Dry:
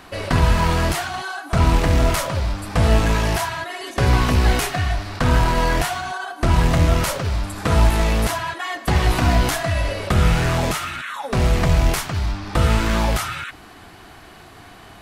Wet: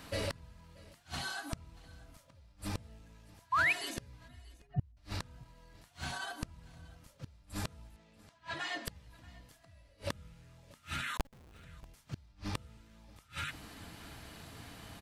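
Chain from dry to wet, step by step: 4.28–4.97 s: spectral contrast enhancement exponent 2.8; peaking EQ 1 kHz -7.5 dB 2.7 oct; hum notches 50/100/150/200/250/300/350/400 Hz; comb of notches 370 Hz; 11.17–11.64 s: Schmitt trigger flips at -28 dBFS; inverted gate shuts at -20 dBFS, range -34 dB; 7.96–8.87 s: band-pass 140–5500 Hz; delay 634 ms -23 dB; 3.52–3.73 s: painted sound rise 960–2700 Hz -26 dBFS; trim -2 dB

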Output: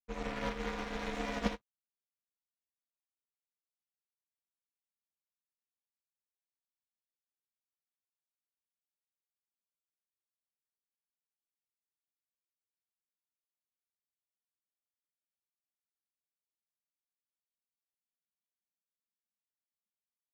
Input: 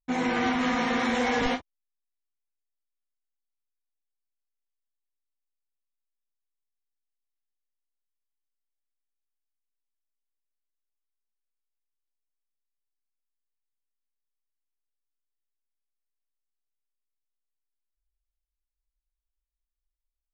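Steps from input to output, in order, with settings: partial rectifier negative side -12 dB; ring modulator 210 Hz; upward expansion 2.5:1, over -46 dBFS

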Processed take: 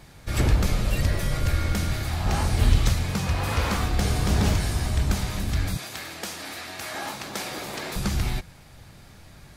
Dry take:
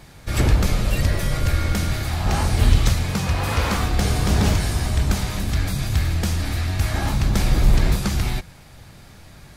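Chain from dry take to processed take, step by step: 5.77–7.96 s: high-pass 400 Hz 12 dB/octave; trim -3.5 dB

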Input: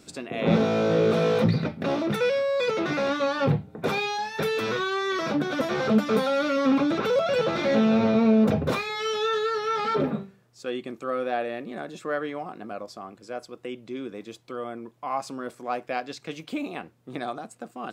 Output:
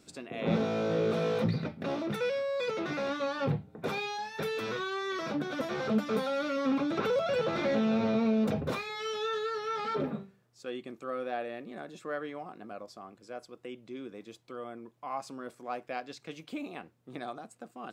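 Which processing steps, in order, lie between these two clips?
6.97–8.61 s: three bands compressed up and down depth 70%; trim -7.5 dB

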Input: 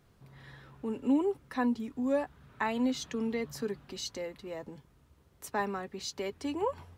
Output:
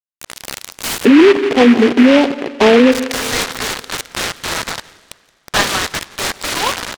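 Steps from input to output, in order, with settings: coarse spectral quantiser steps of 30 dB; tilt EQ -4.5 dB/octave; upward compressor, threshold -40 dBFS; bit crusher 6-bit; ladder band-pass 4.3 kHz, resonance 30%, from 1.04 s 490 Hz, from 2.91 s 2.2 kHz; delay 173 ms -22.5 dB; spring tank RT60 2 s, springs 42 ms, chirp 45 ms, DRR 18.5 dB; loudness maximiser +35 dB; delay time shaken by noise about 1.8 kHz, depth 0.11 ms; trim -1 dB

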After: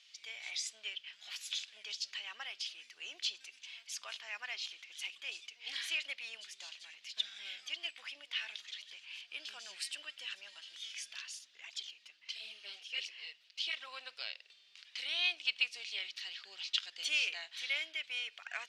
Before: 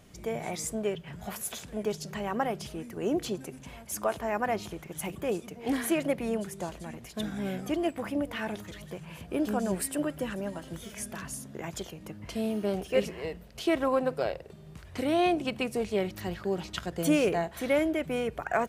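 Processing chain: Butterworth band-pass 3.7 kHz, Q 1.4; 11.39–13.88 s: cancelling through-zero flanger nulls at 1.5 Hz, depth 7.1 ms; trim +6.5 dB

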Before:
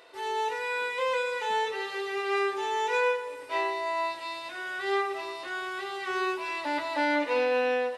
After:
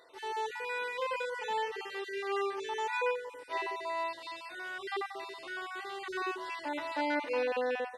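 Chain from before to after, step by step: random holes in the spectrogram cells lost 25%; trim -5 dB

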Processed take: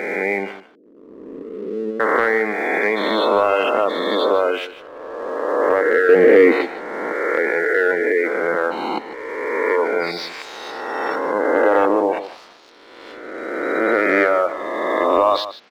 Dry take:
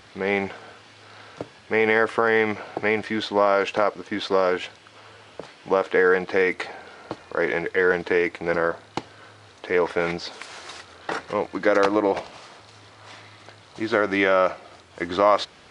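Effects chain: reverse spectral sustain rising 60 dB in 2.32 s; high-pass 210 Hz 24 dB/octave; spectral gate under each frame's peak -20 dB strong; 0.60–2.00 s: inverse Chebyshev low-pass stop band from 790 Hz, stop band 40 dB; 6.09–6.65 s: peaking EQ 270 Hz +14 dB 2.3 oct; waveshaping leveller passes 1; on a send: delay 151 ms -13.5 dB; on the sum: trim -3 dB

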